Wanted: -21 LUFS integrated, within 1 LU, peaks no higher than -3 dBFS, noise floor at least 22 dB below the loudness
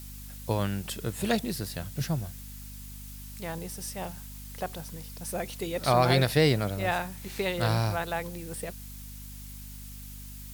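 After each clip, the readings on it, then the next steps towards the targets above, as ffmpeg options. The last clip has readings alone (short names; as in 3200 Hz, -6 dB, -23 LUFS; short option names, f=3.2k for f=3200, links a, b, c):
hum 50 Hz; harmonics up to 250 Hz; hum level -42 dBFS; noise floor -43 dBFS; noise floor target -52 dBFS; loudness -30.0 LUFS; peak -9.0 dBFS; loudness target -21.0 LUFS
-> -af "bandreject=f=50:t=h:w=6,bandreject=f=100:t=h:w=6,bandreject=f=150:t=h:w=6,bandreject=f=200:t=h:w=6,bandreject=f=250:t=h:w=6"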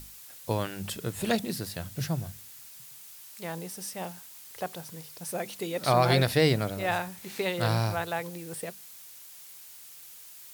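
hum none; noise floor -48 dBFS; noise floor target -52 dBFS
-> -af "afftdn=nr=6:nf=-48"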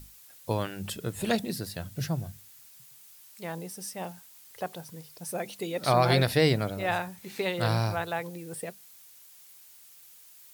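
noise floor -53 dBFS; loudness -30.0 LUFS; peak -9.5 dBFS; loudness target -21.0 LUFS
-> -af "volume=9dB,alimiter=limit=-3dB:level=0:latency=1"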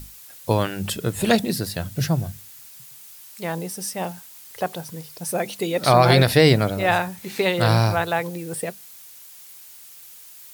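loudness -21.5 LUFS; peak -3.0 dBFS; noise floor -44 dBFS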